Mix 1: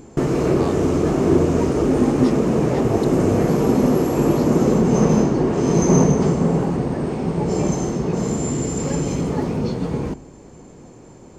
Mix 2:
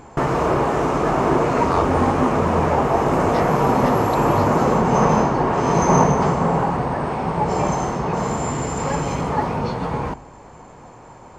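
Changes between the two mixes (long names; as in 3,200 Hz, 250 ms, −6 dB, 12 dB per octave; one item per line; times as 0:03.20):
speech: entry +1.10 s
master: add drawn EQ curve 110 Hz 0 dB, 190 Hz −4 dB, 360 Hz −5 dB, 920 Hz +12 dB, 6,500 Hz −3 dB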